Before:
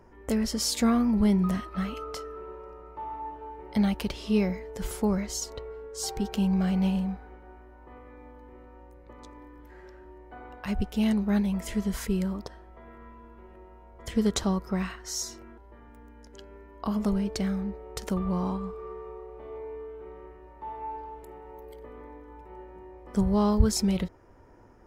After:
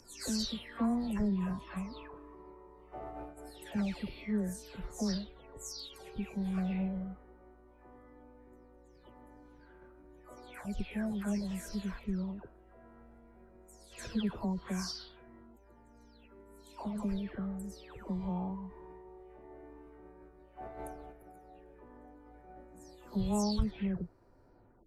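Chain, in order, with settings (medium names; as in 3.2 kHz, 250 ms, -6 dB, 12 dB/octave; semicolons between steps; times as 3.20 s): delay that grows with frequency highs early, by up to 377 ms; formant shift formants -3 st; trim -7 dB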